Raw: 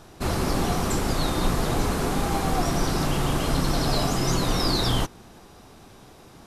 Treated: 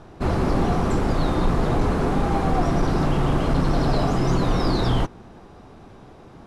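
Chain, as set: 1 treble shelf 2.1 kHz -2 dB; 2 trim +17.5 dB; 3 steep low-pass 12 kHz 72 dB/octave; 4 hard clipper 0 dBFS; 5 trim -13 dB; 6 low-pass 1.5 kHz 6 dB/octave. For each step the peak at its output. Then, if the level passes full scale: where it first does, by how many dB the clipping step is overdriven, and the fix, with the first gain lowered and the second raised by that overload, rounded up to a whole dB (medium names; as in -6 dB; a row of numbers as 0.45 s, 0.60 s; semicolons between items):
-11.0 dBFS, +6.5 dBFS, +6.5 dBFS, 0.0 dBFS, -13.0 dBFS, -13.0 dBFS; step 2, 6.5 dB; step 2 +10.5 dB, step 5 -6 dB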